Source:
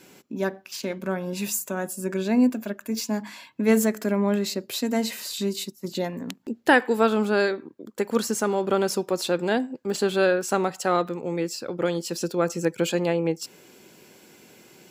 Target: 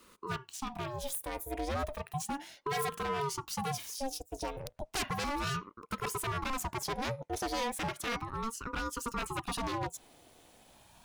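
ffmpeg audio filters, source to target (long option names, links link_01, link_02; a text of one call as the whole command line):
ffmpeg -i in.wav -af "aeval=exprs='0.106*(abs(mod(val(0)/0.106+3,4)-2)-1)':channel_layout=same,asetrate=59535,aresample=44100,aeval=exprs='val(0)*sin(2*PI*470*n/s+470*0.6/0.34*sin(2*PI*0.34*n/s))':channel_layout=same,volume=-5.5dB" out.wav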